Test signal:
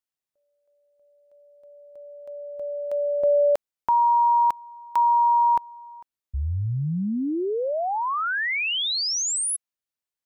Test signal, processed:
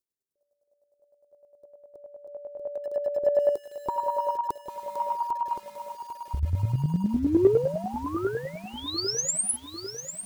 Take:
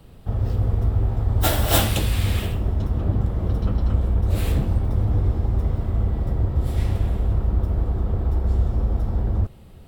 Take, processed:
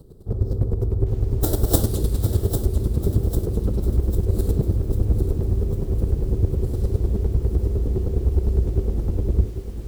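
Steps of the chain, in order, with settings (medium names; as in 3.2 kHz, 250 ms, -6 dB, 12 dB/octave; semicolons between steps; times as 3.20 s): FFT filter 270 Hz 0 dB, 390 Hz +9 dB, 680 Hz -9 dB, 1.3 kHz -12 dB, 2.5 kHz -27 dB, 4.1 kHz -6 dB, 8 kHz -2 dB; square tremolo 9.8 Hz, depth 65%, duty 20%; in parallel at -10 dB: saturation -23.5 dBFS; on the sum: bit-crushed delay 798 ms, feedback 55%, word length 8-bit, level -9 dB; trim +3 dB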